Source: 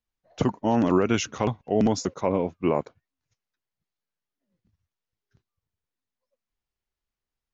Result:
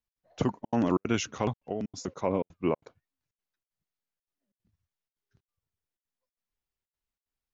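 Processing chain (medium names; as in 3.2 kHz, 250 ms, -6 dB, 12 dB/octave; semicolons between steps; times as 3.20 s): 1.66–2.08 s: compression 10:1, threshold -25 dBFS, peak gain reduction 9 dB; trance gate "x.xxxxxx.xx" 186 bpm -60 dB; trim -4 dB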